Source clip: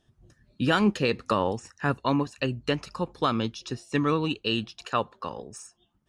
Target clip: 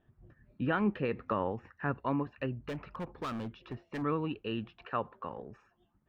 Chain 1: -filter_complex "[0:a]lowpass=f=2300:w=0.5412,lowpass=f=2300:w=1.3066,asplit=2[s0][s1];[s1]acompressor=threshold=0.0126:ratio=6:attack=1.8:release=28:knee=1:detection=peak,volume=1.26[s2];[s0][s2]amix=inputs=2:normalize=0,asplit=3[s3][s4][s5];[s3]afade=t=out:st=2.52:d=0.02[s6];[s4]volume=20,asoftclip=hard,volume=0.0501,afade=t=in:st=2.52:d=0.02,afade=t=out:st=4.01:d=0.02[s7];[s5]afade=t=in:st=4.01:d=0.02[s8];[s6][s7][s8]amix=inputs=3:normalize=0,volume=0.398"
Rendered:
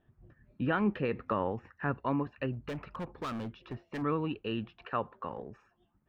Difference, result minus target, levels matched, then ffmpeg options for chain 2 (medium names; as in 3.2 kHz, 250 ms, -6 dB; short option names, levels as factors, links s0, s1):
compression: peak gain reduction -6 dB
-filter_complex "[0:a]lowpass=f=2300:w=0.5412,lowpass=f=2300:w=1.3066,asplit=2[s0][s1];[s1]acompressor=threshold=0.00562:ratio=6:attack=1.8:release=28:knee=1:detection=peak,volume=1.26[s2];[s0][s2]amix=inputs=2:normalize=0,asplit=3[s3][s4][s5];[s3]afade=t=out:st=2.52:d=0.02[s6];[s4]volume=20,asoftclip=hard,volume=0.0501,afade=t=in:st=2.52:d=0.02,afade=t=out:st=4.01:d=0.02[s7];[s5]afade=t=in:st=4.01:d=0.02[s8];[s6][s7][s8]amix=inputs=3:normalize=0,volume=0.398"